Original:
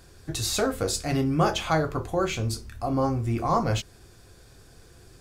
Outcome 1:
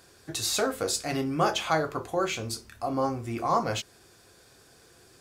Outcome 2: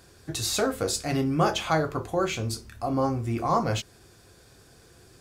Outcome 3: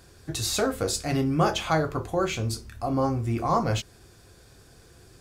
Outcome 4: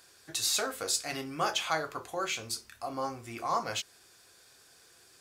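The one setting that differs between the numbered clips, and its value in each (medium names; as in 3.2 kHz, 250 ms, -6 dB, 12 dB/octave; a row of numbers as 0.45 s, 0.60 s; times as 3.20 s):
high-pass, cutoff frequency: 350 Hz, 110 Hz, 45 Hz, 1.5 kHz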